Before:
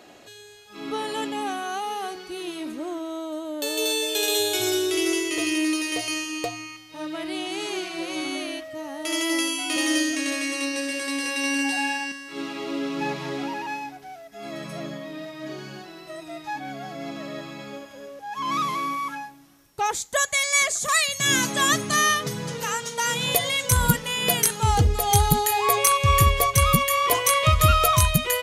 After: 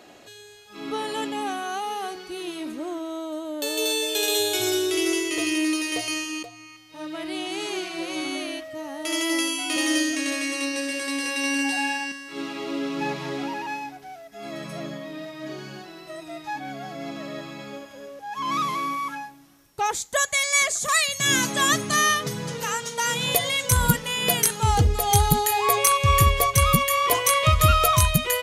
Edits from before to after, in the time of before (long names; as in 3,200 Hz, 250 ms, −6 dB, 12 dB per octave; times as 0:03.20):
0:06.43–0:07.62: fade in equal-power, from −14.5 dB